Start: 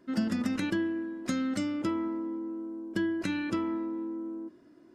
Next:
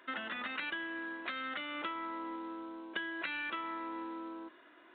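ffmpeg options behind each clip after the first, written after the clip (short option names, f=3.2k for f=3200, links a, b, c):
-af "highpass=1.1k,acompressor=threshold=-49dB:ratio=6,aresample=8000,acrusher=bits=5:mode=log:mix=0:aa=0.000001,aresample=44100,volume=13dB"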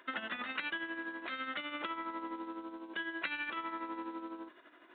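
-af "tremolo=f=12:d=0.58,volume=2.5dB"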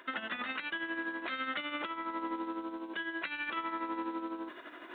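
-af "alimiter=level_in=6.5dB:limit=-24dB:level=0:latency=1:release=436,volume=-6.5dB,areverse,acompressor=mode=upward:threshold=-45dB:ratio=2.5,areverse,volume=5dB"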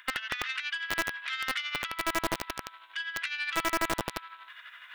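-filter_complex "[0:a]aeval=exprs='0.0562*(cos(1*acos(clip(val(0)/0.0562,-1,1)))-cos(1*PI/2))+0.00891*(cos(4*acos(clip(val(0)/0.0562,-1,1)))-cos(4*PI/2))+0.00126*(cos(6*acos(clip(val(0)/0.0562,-1,1)))-cos(6*PI/2))':c=same,acrossover=split=1400[a][b];[a]acrusher=bits=4:mix=0:aa=0.000001[c];[c][b]amix=inputs=2:normalize=0,volume=6.5dB"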